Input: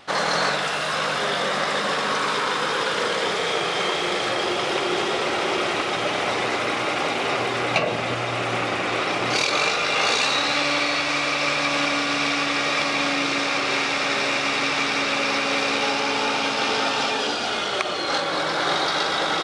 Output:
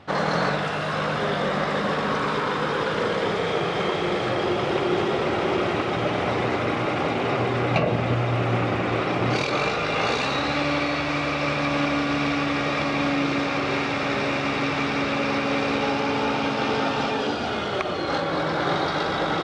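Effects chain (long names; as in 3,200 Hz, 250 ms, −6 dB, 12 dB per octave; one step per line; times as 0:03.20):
high-pass filter 61 Hz
RIAA equalisation playback
level −1.5 dB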